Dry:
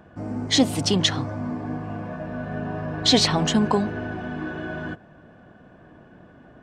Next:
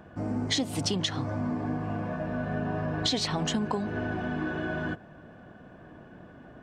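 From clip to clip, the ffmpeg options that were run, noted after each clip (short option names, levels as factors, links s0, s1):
-af "acompressor=threshold=0.0562:ratio=10"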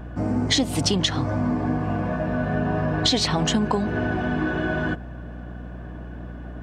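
-af "aeval=exprs='val(0)+0.00794*(sin(2*PI*60*n/s)+sin(2*PI*2*60*n/s)/2+sin(2*PI*3*60*n/s)/3+sin(2*PI*4*60*n/s)/4+sin(2*PI*5*60*n/s)/5)':c=same,volume=2.24"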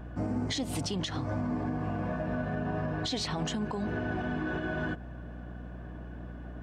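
-af "alimiter=limit=0.141:level=0:latency=1:release=123,volume=0.473"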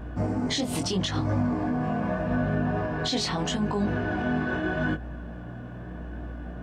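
-af "flanger=delay=19.5:depth=4.8:speed=0.8,volume=2.66"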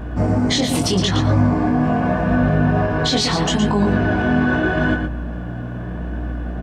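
-filter_complex "[0:a]asplit=2[s0][s1];[s1]adelay=116.6,volume=0.501,highshelf=f=4000:g=-2.62[s2];[s0][s2]amix=inputs=2:normalize=0,volume=2.66"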